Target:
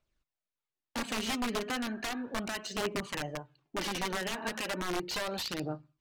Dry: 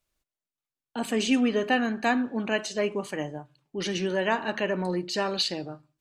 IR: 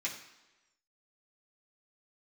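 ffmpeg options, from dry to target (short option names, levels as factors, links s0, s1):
-af "acompressor=threshold=0.0398:ratio=16,aeval=exprs='(mod(20*val(0)+1,2)-1)/20':c=same,adynamicsmooth=sensitivity=6.5:basefreq=5600,aphaser=in_gain=1:out_gain=1:delay=5:decay=0.41:speed=0.35:type=triangular,volume=0.841"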